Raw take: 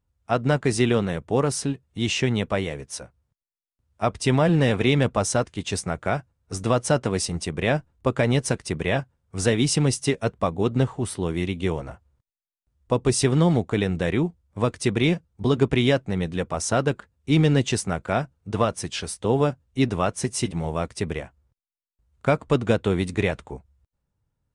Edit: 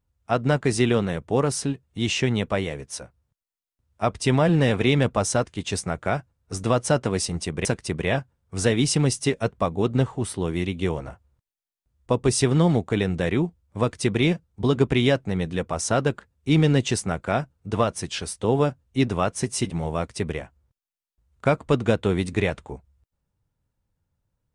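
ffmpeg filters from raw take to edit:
ffmpeg -i in.wav -filter_complex "[0:a]asplit=2[link_01][link_02];[link_01]atrim=end=7.652[link_03];[link_02]atrim=start=8.458[link_04];[link_03][link_04]acrossfade=duration=0.004:curve1=hsin:curve2=hsin" out.wav

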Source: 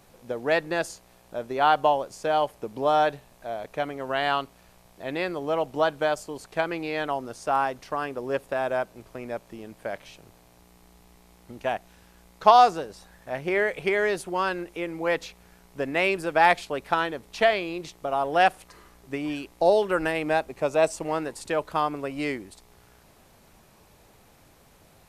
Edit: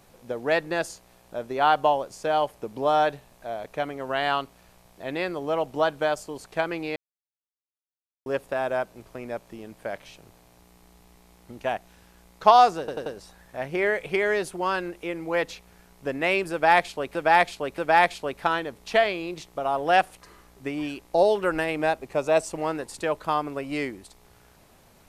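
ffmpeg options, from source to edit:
ffmpeg -i in.wav -filter_complex "[0:a]asplit=8[link_01][link_02][link_03][link_04][link_05][link_06][link_07][link_08];[link_01]atrim=end=6.96,asetpts=PTS-STARTPTS,afade=type=out:start_time=6.956:duration=0.004:curve=hsin[link_09];[link_02]atrim=start=6.96:end=8.26,asetpts=PTS-STARTPTS,volume=0[link_10];[link_03]atrim=start=8.26:end=12.882,asetpts=PTS-STARTPTS,afade=type=in:duration=0.004:curve=hsin[link_11];[link_04]atrim=start=12.788:end=12.882[link_12];[link_05]atrim=start=12.788:end=12.882[link_13];[link_06]atrim=start=12.788:end=16.882[link_14];[link_07]atrim=start=16.248:end=16.882[link_15];[link_08]atrim=start=16.248[link_16];[link_09][link_10][link_11]concat=n=3:v=0:a=1[link_17];[link_17][link_12]acrossfade=duration=0.004:curve1=hsin:curve2=hsin[link_18];[link_18][link_13]acrossfade=duration=0.004:curve1=hsin:curve2=hsin[link_19];[link_19][link_14]acrossfade=duration=0.004:curve1=hsin:curve2=hsin[link_20];[link_20][link_15]acrossfade=duration=0.004:curve1=hsin:curve2=hsin[link_21];[link_21][link_16]acrossfade=duration=0.004:curve1=hsin:curve2=hsin" out.wav

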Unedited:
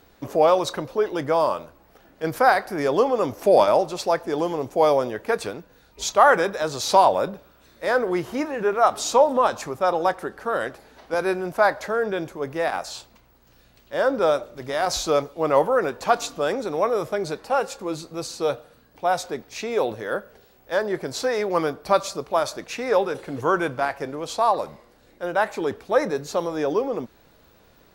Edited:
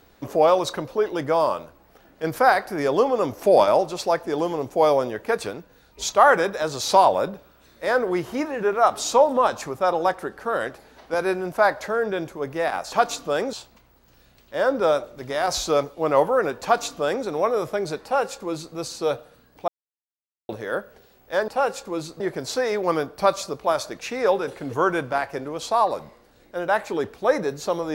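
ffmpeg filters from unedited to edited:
ffmpeg -i in.wav -filter_complex "[0:a]asplit=7[link_01][link_02][link_03][link_04][link_05][link_06][link_07];[link_01]atrim=end=12.922[link_08];[link_02]atrim=start=16.028:end=16.642[link_09];[link_03]atrim=start=12.918:end=19.07,asetpts=PTS-STARTPTS,afade=type=out:start_time=6.148:duration=0.004:curve=hsin[link_10];[link_04]atrim=start=19.07:end=19.88,asetpts=PTS-STARTPTS,volume=0[link_11];[link_05]atrim=start=19.88:end=20.872,asetpts=PTS-STARTPTS,afade=type=in:duration=0.004:curve=hsin[link_12];[link_06]atrim=start=17.418:end=18.142[link_13];[link_07]atrim=start=20.868[link_14];[link_08][link_09]acrossfade=duration=0.004:curve1=hsin:curve2=hsin[link_15];[link_10][link_11][link_12]concat=n=3:v=0:a=1[link_16];[link_15][link_16]acrossfade=duration=0.004:curve1=hsin:curve2=hsin[link_17];[link_17][link_13]acrossfade=duration=0.004:curve1=hsin:curve2=hsin[link_18];[link_18][link_14]acrossfade=duration=0.004:curve1=hsin:curve2=hsin" out.wav

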